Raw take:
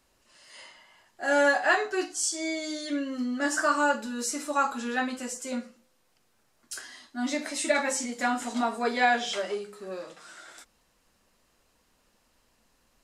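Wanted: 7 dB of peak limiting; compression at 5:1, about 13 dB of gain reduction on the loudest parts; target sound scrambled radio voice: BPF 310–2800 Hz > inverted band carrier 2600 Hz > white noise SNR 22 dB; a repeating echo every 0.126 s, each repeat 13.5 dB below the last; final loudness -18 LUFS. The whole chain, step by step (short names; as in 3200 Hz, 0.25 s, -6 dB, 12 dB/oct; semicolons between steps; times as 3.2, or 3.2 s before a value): compressor 5:1, threshold -33 dBFS; limiter -28 dBFS; BPF 310–2800 Hz; feedback echo 0.126 s, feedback 21%, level -13.5 dB; inverted band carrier 2600 Hz; white noise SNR 22 dB; gain +20.5 dB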